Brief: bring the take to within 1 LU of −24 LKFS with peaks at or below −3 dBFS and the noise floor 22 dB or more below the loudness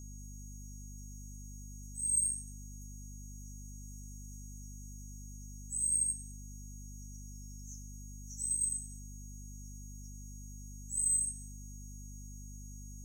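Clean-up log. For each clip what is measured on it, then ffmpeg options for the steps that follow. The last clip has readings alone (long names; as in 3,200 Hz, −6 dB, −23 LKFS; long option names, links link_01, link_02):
mains hum 50 Hz; hum harmonics up to 250 Hz; level of the hum −45 dBFS; interfering tone 6,600 Hz; level of the tone −54 dBFS; integrated loudness −33.0 LKFS; sample peak −20.5 dBFS; target loudness −24.0 LKFS
→ -af "bandreject=frequency=50:width_type=h:width=4,bandreject=frequency=100:width_type=h:width=4,bandreject=frequency=150:width_type=h:width=4,bandreject=frequency=200:width_type=h:width=4,bandreject=frequency=250:width_type=h:width=4"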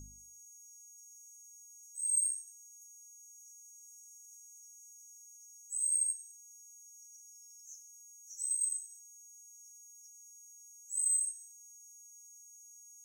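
mains hum none found; interfering tone 6,600 Hz; level of the tone −54 dBFS
→ -af "bandreject=frequency=6600:width=30"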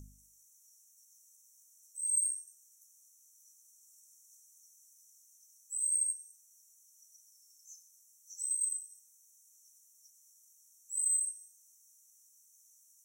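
interfering tone none found; integrated loudness −32.0 LKFS; sample peak −21.0 dBFS; target loudness −24.0 LKFS
→ -af "volume=8dB"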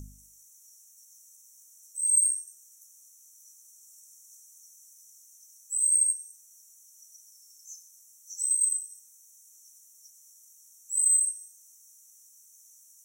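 integrated loudness −24.0 LKFS; sample peak −13.0 dBFS; background noise floor −57 dBFS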